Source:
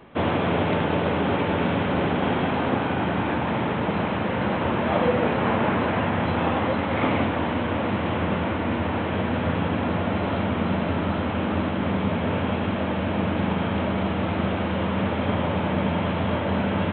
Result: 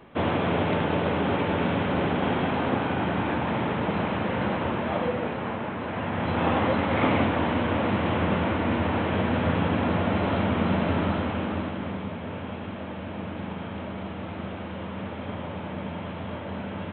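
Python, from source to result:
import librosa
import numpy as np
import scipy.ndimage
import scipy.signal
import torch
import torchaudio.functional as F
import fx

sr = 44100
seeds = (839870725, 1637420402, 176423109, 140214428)

y = fx.gain(x, sr, db=fx.line((4.43, -2.0), (5.74, -10.0), (6.51, 0.0), (11.02, 0.0), (12.16, -10.0)))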